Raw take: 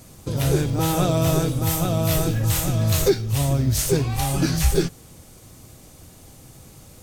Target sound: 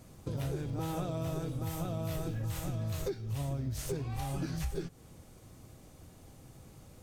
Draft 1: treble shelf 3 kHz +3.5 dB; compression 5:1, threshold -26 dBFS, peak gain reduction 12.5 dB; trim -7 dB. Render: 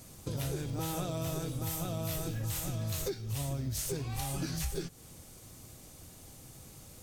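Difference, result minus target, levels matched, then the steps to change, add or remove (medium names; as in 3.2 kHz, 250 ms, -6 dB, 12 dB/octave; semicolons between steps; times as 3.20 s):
8 kHz band +7.5 dB
change: treble shelf 3 kHz -8 dB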